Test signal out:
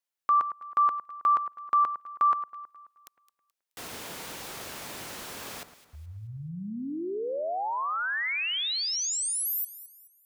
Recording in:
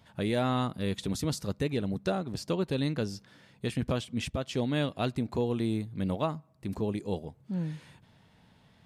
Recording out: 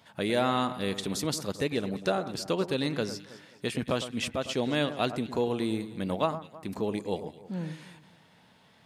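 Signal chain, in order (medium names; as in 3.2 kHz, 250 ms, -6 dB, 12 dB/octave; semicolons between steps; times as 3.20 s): high-pass 360 Hz 6 dB/octave; echo whose repeats swap between lows and highs 107 ms, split 1.9 kHz, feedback 60%, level -11.5 dB; trim +4.5 dB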